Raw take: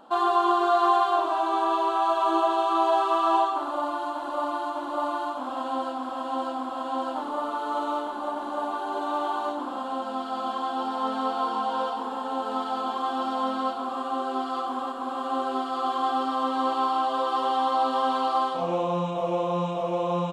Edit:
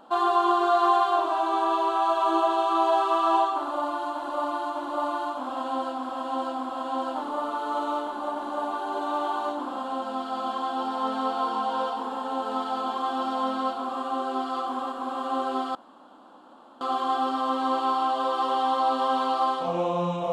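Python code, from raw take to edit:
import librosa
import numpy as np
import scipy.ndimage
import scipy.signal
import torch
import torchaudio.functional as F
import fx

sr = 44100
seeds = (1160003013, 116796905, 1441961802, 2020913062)

y = fx.edit(x, sr, fx.insert_room_tone(at_s=15.75, length_s=1.06), tone=tone)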